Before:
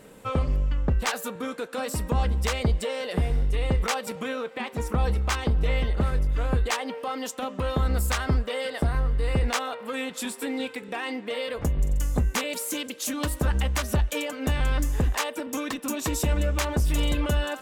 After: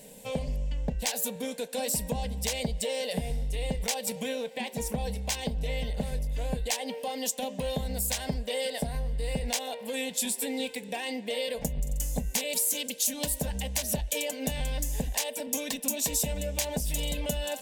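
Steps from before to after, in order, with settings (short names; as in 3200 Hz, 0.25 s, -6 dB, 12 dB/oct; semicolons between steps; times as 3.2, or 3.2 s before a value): high shelf 4300 Hz +10 dB; compressor, threshold -23 dBFS, peak gain reduction 5.5 dB; fixed phaser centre 340 Hz, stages 6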